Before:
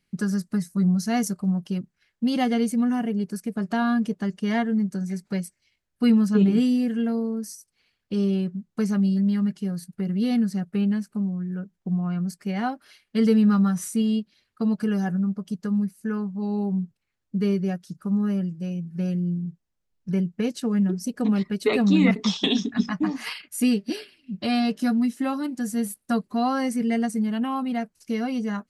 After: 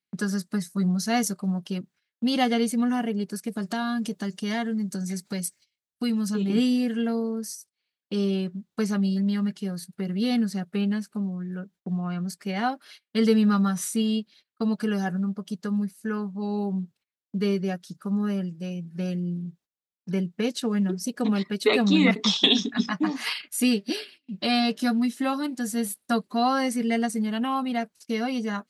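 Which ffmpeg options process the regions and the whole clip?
-filter_complex "[0:a]asettb=1/sr,asplit=3[a][b][c];[a]atrim=end=3.484[d];[b]atrim=start=3.48:end=6.5,asetpts=PTS-STARTPTS,afade=t=in:d=0.004:c=qsin,afade=t=out:st=3.016:d=0.004:c=qsin,acompressor=threshold=-27dB:ratio=2.5:attack=3.2:release=140:knee=1:detection=peak,bass=f=250:g=4,treble=f=4k:g=8[e];[c]atrim=start=6.496[f];[d][e]acrossfade=d=0.004:c1=hsin:c2=qsin[g];[g][f]acrossfade=d=0.004:c1=qsin:c2=hsin,agate=range=-18dB:threshold=-51dB:ratio=16:detection=peak,highpass=f=310:p=1,equalizer=f=3.7k:w=2.5:g=5,volume=2.5dB"

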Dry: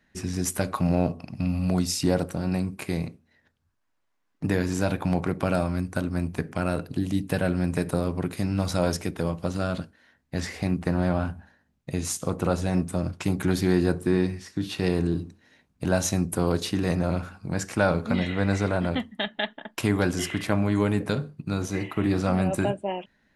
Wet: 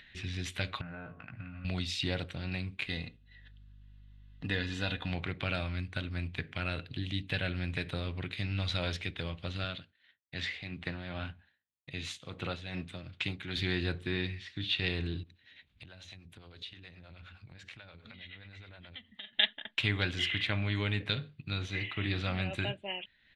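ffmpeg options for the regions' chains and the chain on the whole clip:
-filter_complex "[0:a]asettb=1/sr,asplit=3[a][b][c];[a]atrim=end=0.814[d];[b]atrim=start=0.81:end=1.65,asetpts=PTS-STARTPTS,afade=t=in:d=0.004:c=qsin,afade=t=out:st=0.836:d=0.004:c=qsin,asplit=2[e][f];[f]adelay=18,volume=-5dB[g];[e][g]amix=inputs=2:normalize=0,atrim=end_sample=37044,acompressor=threshold=-34dB:ratio=3:attack=3.2:release=140:knee=1:detection=peak,lowpass=f=1.5k:t=q:w=12[h];[c]atrim=start=1.646[i];[d][h]acrossfade=d=0.004:c1=hsin:c2=qsin[j];[j][i]acrossfade=d=0.004:c1=qsin:c2=hsin,asettb=1/sr,asplit=3[k][l][m];[k]atrim=end=2.864[n];[l]atrim=start=2.86:end=5.1,asetpts=PTS-STARTPTS,afade=t=in:d=0.004:c=qsin,afade=t=out:st=2.236:d=0.004:c=qsin,aecho=1:1:4.1:0.39,atrim=end_sample=98784,aeval=exprs='val(0)+0.00178*(sin(2*PI*50*n/s)+sin(2*PI*2*50*n/s)/2+sin(2*PI*3*50*n/s)/3+sin(2*PI*4*50*n/s)/4+sin(2*PI*5*50*n/s)/5)':c=same,asuperstop=centerf=2300:order=8:qfactor=7.6[o];[m]atrim=start=5.096[p];[n][o]acrossfade=d=0.004:c1=hsin:c2=qsin[q];[q][p]acrossfade=d=0.004:c1=qsin:c2=hsin,asettb=1/sr,asplit=3[r][s][t];[r]atrim=end=9.644[u];[s]atrim=start=9.64:end=13.56,asetpts=PTS-STARTPTS,afade=t=in:d=0.004:c=qsin,afade=t=out:st=3.916:d=0.004:c=qsin,agate=range=-33dB:threshold=-52dB:ratio=3:release=100:detection=peak,tremolo=f=2.5:d=0.56,highpass=110[v];[t]atrim=start=13.556[w];[u][v]acrossfade=d=0.004:c1=hsin:c2=qsin[x];[x][w]acrossfade=d=0.004:c1=qsin:c2=hsin,asettb=1/sr,asplit=3[y][z][aa];[y]atrim=end=15.234[ab];[z]atrim=start=15.23:end=19.33,asetpts=PTS-STARTPTS,afade=t=in:d=0.004:c=qsin,afade=t=out:st=4.096:d=0.004:c=qsin,acrossover=split=410[ac][ad];[ac]aeval=exprs='val(0)*(1-0.7/2+0.7/2*cos(2*PI*9.5*n/s))':c=same[ae];[ad]aeval=exprs='val(0)*(1-0.7/2-0.7/2*cos(2*PI*9.5*n/s))':c=same[af];[ae][af]amix=inputs=2:normalize=0,acompressor=threshold=-43dB:ratio=5:attack=3.2:release=140:knee=1:detection=peak[ag];[aa]atrim=start=19.326[ah];[ab][ag]acrossfade=d=0.004:c1=hsin:c2=qsin[ai];[ai][ah]acrossfade=d=0.004:c1=qsin:c2=hsin,firequalizer=gain_entry='entry(120,0);entry(170,-9);entry(990,-8);entry(2000,7);entry(3600,13);entry(5200,-8);entry(11000,-21)':delay=0.05:min_phase=1,acompressor=mode=upward:threshold=-41dB:ratio=2.5,volume=-5dB"

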